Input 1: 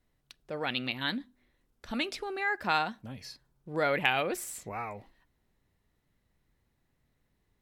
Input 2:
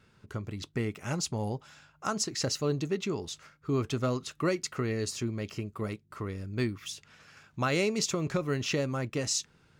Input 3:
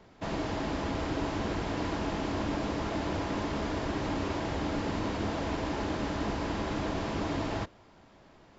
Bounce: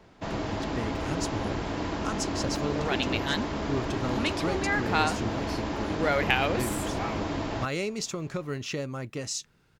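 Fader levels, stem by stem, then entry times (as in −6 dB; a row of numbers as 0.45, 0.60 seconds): +2.0, −3.0, +1.0 decibels; 2.25, 0.00, 0.00 seconds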